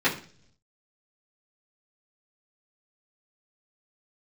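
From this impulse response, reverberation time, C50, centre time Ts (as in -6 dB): 0.50 s, 11.5 dB, 19 ms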